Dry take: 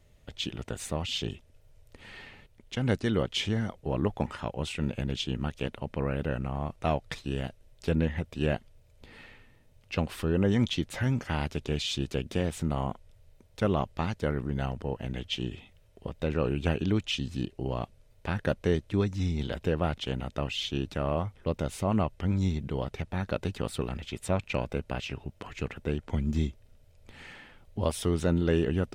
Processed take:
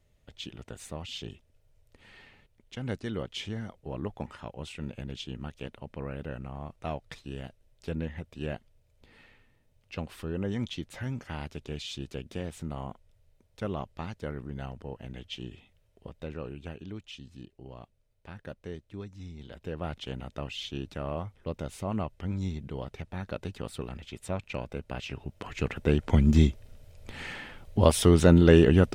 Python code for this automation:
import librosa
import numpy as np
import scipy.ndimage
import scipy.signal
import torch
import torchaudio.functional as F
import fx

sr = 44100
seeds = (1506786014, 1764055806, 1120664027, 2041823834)

y = fx.gain(x, sr, db=fx.line((16.09, -7.0), (16.73, -14.0), (19.41, -14.0), (19.94, -5.0), (24.75, -5.0), (26.07, 8.0)))